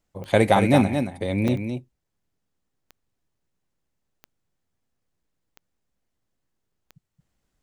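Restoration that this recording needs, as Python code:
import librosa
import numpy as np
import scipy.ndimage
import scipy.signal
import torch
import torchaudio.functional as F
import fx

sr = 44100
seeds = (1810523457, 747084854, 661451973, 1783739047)

y = fx.fix_declick_ar(x, sr, threshold=10.0)
y = fx.fix_interpolate(y, sr, at_s=(1.48, 2.04, 3.35, 5.23, 6.72), length_ms=4.2)
y = fx.fix_echo_inverse(y, sr, delay_ms=224, level_db=-7.0)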